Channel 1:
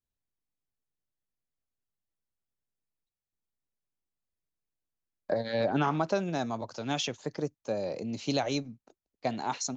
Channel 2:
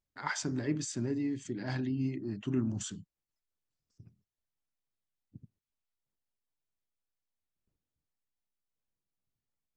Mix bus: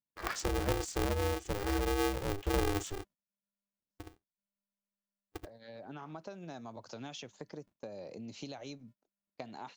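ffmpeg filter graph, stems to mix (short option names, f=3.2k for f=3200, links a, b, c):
-filter_complex "[0:a]acompressor=threshold=-38dB:ratio=8,adelay=150,volume=-3.5dB[a];[1:a]lowshelf=f=290:g=10.5,acompressor=threshold=-30dB:ratio=1.5,aeval=exprs='val(0)*sgn(sin(2*PI*200*n/s))':c=same,volume=-2.5dB,asplit=2[b][c];[c]apad=whole_len=437246[d];[a][d]sidechaincompress=threshold=-49dB:ratio=4:attack=7.8:release=770[e];[e][b]amix=inputs=2:normalize=0,agate=range=-19dB:threshold=-56dB:ratio=16:detection=peak"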